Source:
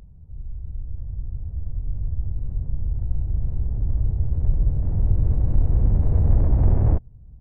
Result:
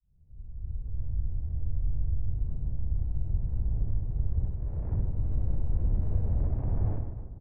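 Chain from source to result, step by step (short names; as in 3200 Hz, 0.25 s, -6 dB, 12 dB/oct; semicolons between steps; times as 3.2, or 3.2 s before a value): opening faded in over 1.04 s; 4.5–4.92 low shelf 280 Hz -11.5 dB; compressor 6:1, threshold -24 dBFS, peak gain reduction 13 dB; reverse bouncing-ball echo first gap 60 ms, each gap 1.6×, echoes 5; low-pass opened by the level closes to 800 Hz, open at -19.5 dBFS; gain -2 dB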